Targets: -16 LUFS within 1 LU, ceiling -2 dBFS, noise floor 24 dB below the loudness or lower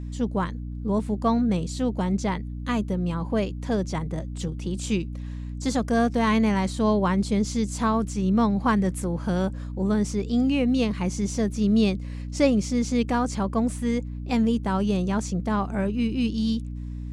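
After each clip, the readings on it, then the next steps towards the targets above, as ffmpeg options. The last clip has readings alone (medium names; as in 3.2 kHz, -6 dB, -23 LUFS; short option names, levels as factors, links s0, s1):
hum 60 Hz; highest harmonic 300 Hz; hum level -31 dBFS; loudness -25.0 LUFS; peak level -8.5 dBFS; loudness target -16.0 LUFS
-> -af "bandreject=f=60:t=h:w=6,bandreject=f=120:t=h:w=6,bandreject=f=180:t=h:w=6,bandreject=f=240:t=h:w=6,bandreject=f=300:t=h:w=6"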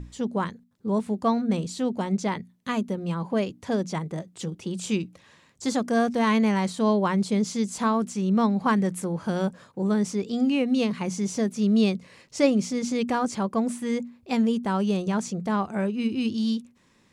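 hum not found; loudness -26.0 LUFS; peak level -8.0 dBFS; loudness target -16.0 LUFS
-> -af "volume=3.16,alimiter=limit=0.794:level=0:latency=1"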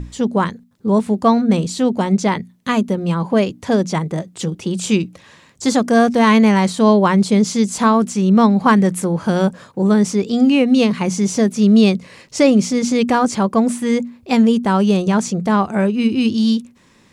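loudness -16.0 LUFS; peak level -2.0 dBFS; noise floor -52 dBFS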